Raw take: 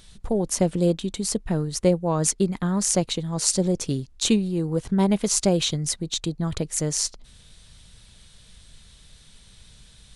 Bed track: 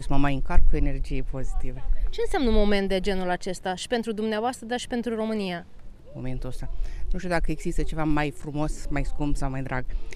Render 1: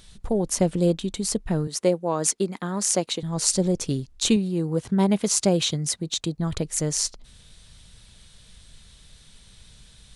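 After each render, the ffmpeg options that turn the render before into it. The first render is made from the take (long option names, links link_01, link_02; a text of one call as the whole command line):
ffmpeg -i in.wav -filter_complex "[0:a]asettb=1/sr,asplit=3[link_01][link_02][link_03];[link_01]atrim=end=1.674[link_04];[link_02]atrim=start=1.67:end=3.23,asetpts=PTS-STARTPTS,afade=type=in:duration=0.004:curve=qsin,afade=type=out:start_time=1.556:duration=0.004:curve=qsin,highpass=250[link_05];[link_03]atrim=start=3.226[link_06];[link_04][link_05]acrossfade=duration=0.004:curve1=hsin:curve2=qsin[link_07];[link_07][link_06]acrossfade=duration=0.004:curve1=qsin:curve2=hsin,asettb=1/sr,asplit=3[link_08][link_09][link_10];[link_08]atrim=end=4.364[link_11];[link_09]atrim=start=4.36:end=6.38,asetpts=PTS-STARTPTS,afade=type=in:duration=0.004:curve=qsin,afade=type=out:start_time=2.016:duration=0.004:curve=qsin,highpass=82[link_12];[link_10]atrim=start=6.376[link_13];[link_11][link_12]acrossfade=duration=0.004:curve1=hsin:curve2=qsin[link_14];[link_14][link_13]acrossfade=duration=0.004:curve1=qsin:curve2=hsin" out.wav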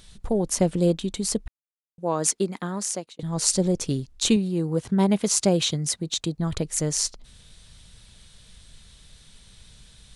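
ffmpeg -i in.wav -filter_complex "[0:a]asplit=4[link_01][link_02][link_03][link_04];[link_01]atrim=end=1.48,asetpts=PTS-STARTPTS,afade=type=out:start_time=1.476:duration=0.004:curve=hsin[link_05];[link_02]atrim=start=1.48:end=1.98,asetpts=PTS-STARTPTS,volume=0[link_06];[link_03]atrim=start=1.98:end=3.19,asetpts=PTS-STARTPTS,afade=type=in:duration=0.004:curve=hsin,afade=type=out:start_time=0.64:duration=0.57[link_07];[link_04]atrim=start=3.19,asetpts=PTS-STARTPTS,afade=type=in:duration=0.004:curve=hsin[link_08];[link_05][link_06][link_07][link_08]concat=n=4:v=0:a=1" out.wav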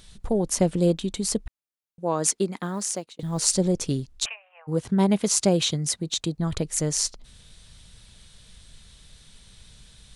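ffmpeg -i in.wav -filter_complex "[0:a]asettb=1/sr,asplit=3[link_01][link_02][link_03];[link_01]atrim=end=2.584[link_04];[link_02]atrim=start=2.58:end=3.56,asetpts=PTS-STARTPTS,afade=type=in:duration=0.004:curve=qsin,afade=type=out:start_time=0.976:duration=0.004:curve=qsin,acrusher=bits=9:mode=log:mix=0:aa=0.000001[link_05];[link_03]atrim=start=3.556[link_06];[link_04][link_05]acrossfade=duration=0.004:curve1=hsin:curve2=qsin[link_07];[link_07][link_06]acrossfade=duration=0.004:curve1=qsin:curve2=hsin,asplit=3[link_08][link_09][link_10];[link_08]afade=type=out:start_time=4.24:duration=0.02[link_11];[link_09]asuperpass=centerf=1300:order=20:qfactor=0.6,afade=type=in:start_time=4.24:duration=0.02,afade=type=out:start_time=4.67:duration=0.02[link_12];[link_10]afade=type=in:start_time=4.67:duration=0.02[link_13];[link_11][link_12][link_13]amix=inputs=3:normalize=0" out.wav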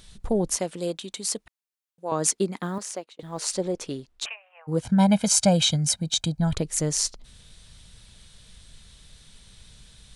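ffmpeg -i in.wav -filter_complex "[0:a]asettb=1/sr,asplit=3[link_01][link_02][link_03];[link_01]atrim=end=0.564[link_04];[link_02]atrim=start=0.56:end=2.12,asetpts=PTS-STARTPTS,afade=type=in:duration=0.004:curve=qsin,afade=type=out:start_time=1.556:duration=0.004:curve=qsin,highpass=frequency=830:poles=1[link_05];[link_03]atrim=start=2.116[link_06];[link_04][link_05]acrossfade=duration=0.004:curve1=hsin:curve2=qsin[link_07];[link_07][link_06]acrossfade=duration=0.004:curve1=qsin:curve2=hsin,asettb=1/sr,asplit=3[link_08][link_09][link_10];[link_08]atrim=end=2.784[link_11];[link_09]atrim=start=2.78:end=4.26,asetpts=PTS-STARTPTS,afade=type=in:duration=0.004:curve=qsin,afade=type=out:start_time=1.476:duration=0.004:curve=qsin,bass=frequency=250:gain=-14,treble=frequency=4000:gain=-8[link_12];[link_10]atrim=start=4.256[link_13];[link_11][link_12]acrossfade=duration=0.004:curve1=hsin:curve2=qsin[link_14];[link_14][link_13]acrossfade=duration=0.004:curve1=qsin:curve2=hsin,asettb=1/sr,asplit=3[link_15][link_16][link_17];[link_15]atrim=end=4.824[link_18];[link_16]atrim=start=4.82:end=6.53,asetpts=PTS-STARTPTS,afade=type=in:duration=0.004:curve=qsin,afade=type=out:start_time=1.706:duration=0.004:curve=qsin,aecho=1:1:1.3:0.85,atrim=end_sample=75411[link_19];[link_17]atrim=start=6.526[link_20];[link_18][link_19]acrossfade=duration=0.004:curve1=hsin:curve2=qsin[link_21];[link_21][link_20]acrossfade=duration=0.004:curve1=qsin:curve2=hsin" out.wav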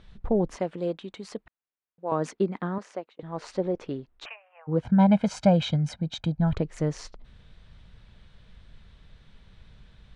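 ffmpeg -i in.wav -af "lowpass=2000" out.wav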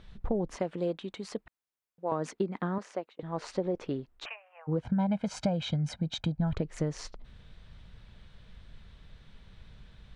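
ffmpeg -i in.wav -af "acompressor=threshold=-26dB:ratio=6" out.wav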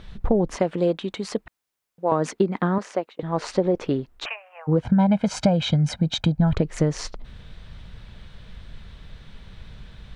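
ffmpeg -i in.wav -af "volume=10dB" out.wav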